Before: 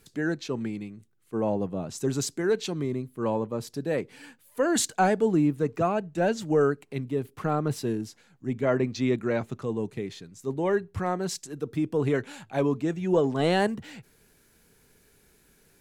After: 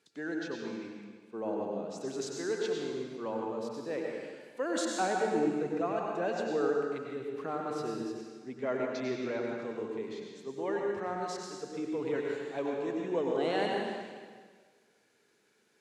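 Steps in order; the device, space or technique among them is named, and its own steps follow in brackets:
supermarket ceiling speaker (band-pass filter 290–6,200 Hz; convolution reverb RT60 1.6 s, pre-delay 88 ms, DRR −1 dB)
level −8.5 dB

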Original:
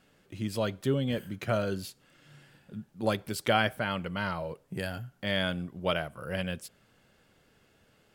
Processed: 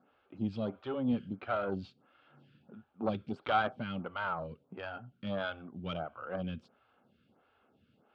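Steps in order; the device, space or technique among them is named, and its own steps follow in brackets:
vibe pedal into a guitar amplifier (phaser with staggered stages 1.5 Hz; tube saturation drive 24 dB, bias 0.6; loudspeaker in its box 75–3,500 Hz, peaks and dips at 79 Hz +4 dB, 240 Hz +7 dB, 790 Hz +6 dB, 1,300 Hz +7 dB, 1,900 Hz −10 dB)

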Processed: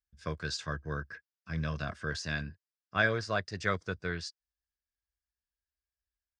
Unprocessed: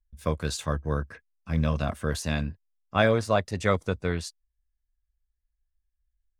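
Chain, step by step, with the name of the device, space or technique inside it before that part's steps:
car door speaker (loudspeaker in its box 90–7,100 Hz, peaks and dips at 240 Hz −7 dB, 540 Hz −5 dB, 850 Hz −7 dB, 1,600 Hz +9 dB, 5,000 Hz +9 dB)
level −6.5 dB

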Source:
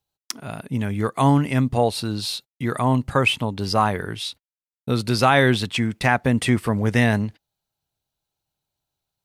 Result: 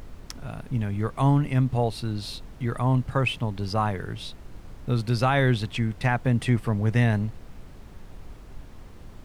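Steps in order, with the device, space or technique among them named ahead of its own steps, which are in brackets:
car interior (parametric band 120 Hz +7 dB 0.82 octaves; high-shelf EQ 4,500 Hz −6 dB; brown noise bed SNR 14 dB)
level −6.5 dB

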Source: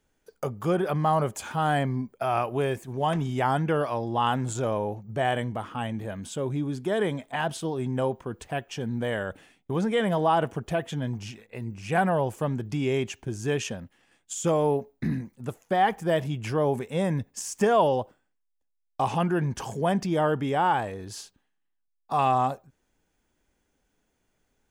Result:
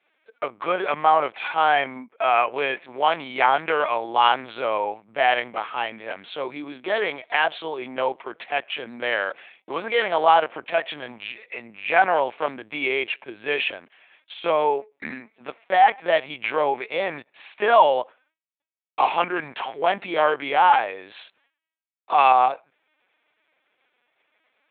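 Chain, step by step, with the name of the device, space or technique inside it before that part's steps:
talking toy (linear-prediction vocoder at 8 kHz pitch kept; high-pass filter 640 Hz 12 dB per octave; parametric band 2,300 Hz +8.5 dB 0.38 octaves)
level +8.5 dB

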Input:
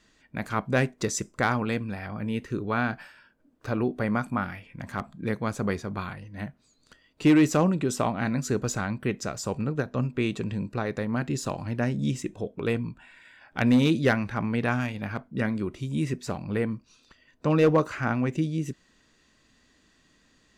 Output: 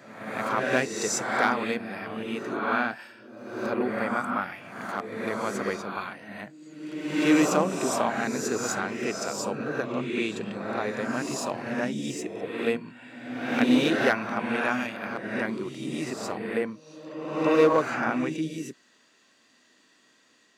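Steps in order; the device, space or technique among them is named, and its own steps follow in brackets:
ghost voice (reversed playback; convolution reverb RT60 1.1 s, pre-delay 18 ms, DRR 0 dB; reversed playback; high-pass filter 330 Hz 12 dB per octave)

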